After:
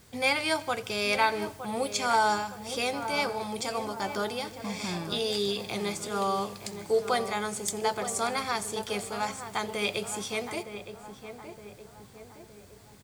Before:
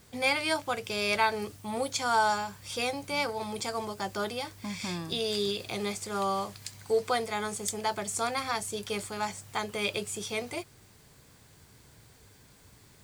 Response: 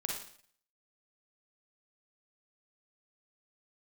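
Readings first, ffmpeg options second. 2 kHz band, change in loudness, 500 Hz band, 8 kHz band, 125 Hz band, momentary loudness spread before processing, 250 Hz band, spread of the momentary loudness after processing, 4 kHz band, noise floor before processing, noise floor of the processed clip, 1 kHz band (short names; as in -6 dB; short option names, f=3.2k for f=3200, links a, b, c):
+1.0 dB, +1.5 dB, +1.5 dB, +1.0 dB, +0.5 dB, 9 LU, +1.5 dB, 18 LU, +1.0 dB, -58 dBFS, -52 dBFS, +1.5 dB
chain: -filter_complex "[0:a]asplit=2[a][b];[b]adelay=915,lowpass=f=1.5k:p=1,volume=-9dB,asplit=2[c][d];[d]adelay=915,lowpass=f=1.5k:p=1,volume=0.54,asplit=2[e][f];[f]adelay=915,lowpass=f=1.5k:p=1,volume=0.54,asplit=2[g][h];[h]adelay=915,lowpass=f=1.5k:p=1,volume=0.54,asplit=2[i][j];[j]adelay=915,lowpass=f=1.5k:p=1,volume=0.54,asplit=2[k][l];[l]adelay=915,lowpass=f=1.5k:p=1,volume=0.54[m];[a][c][e][g][i][k][m]amix=inputs=7:normalize=0,asplit=2[n][o];[1:a]atrim=start_sample=2205,asetrate=35721,aresample=44100,adelay=85[p];[o][p]afir=irnorm=-1:irlink=0,volume=-22dB[q];[n][q]amix=inputs=2:normalize=0,volume=1dB"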